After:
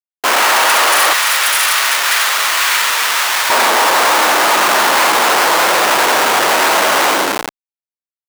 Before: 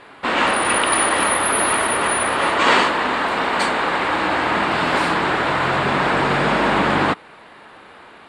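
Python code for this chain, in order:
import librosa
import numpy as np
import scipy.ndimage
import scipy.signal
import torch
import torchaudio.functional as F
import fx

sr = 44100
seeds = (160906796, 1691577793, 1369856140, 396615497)

y = fx.rev_spring(x, sr, rt60_s=1.8, pass_ms=(40, 57), chirp_ms=40, drr_db=2.5)
y = fx.schmitt(y, sr, flips_db=-22.5)
y = fx.highpass(y, sr, hz=fx.steps((0.0, 690.0), (1.13, 1500.0), (3.5, 570.0)), slope=12)
y = y * librosa.db_to_amplitude(7.5)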